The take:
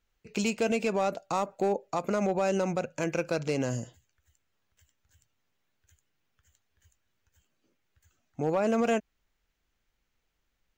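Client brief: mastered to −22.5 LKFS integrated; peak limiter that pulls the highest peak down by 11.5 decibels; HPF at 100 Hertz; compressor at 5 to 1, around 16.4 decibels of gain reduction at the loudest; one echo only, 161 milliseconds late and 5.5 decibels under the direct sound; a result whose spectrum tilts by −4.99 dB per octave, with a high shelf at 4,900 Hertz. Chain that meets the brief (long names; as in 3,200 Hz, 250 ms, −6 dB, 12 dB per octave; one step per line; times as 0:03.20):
high-pass filter 100 Hz
high-shelf EQ 4,900 Hz +6.5 dB
downward compressor 5 to 1, threshold −42 dBFS
brickwall limiter −36 dBFS
single-tap delay 161 ms −5.5 dB
level +24 dB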